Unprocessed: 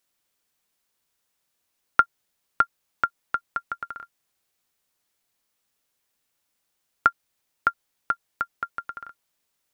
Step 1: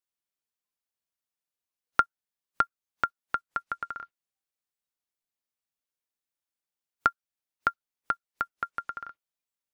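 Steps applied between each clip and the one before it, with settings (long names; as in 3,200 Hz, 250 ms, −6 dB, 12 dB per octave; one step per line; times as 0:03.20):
noise reduction from a noise print of the clip's start 17 dB
in parallel at +1 dB: downward compressor, threshold −28 dBFS, peak gain reduction 15.5 dB
on the sum: level −6.5 dB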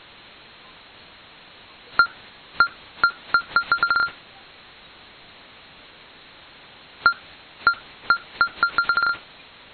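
noise gate −59 dBFS, range −7 dB
power curve on the samples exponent 0.35
linear-phase brick-wall low-pass 4,300 Hz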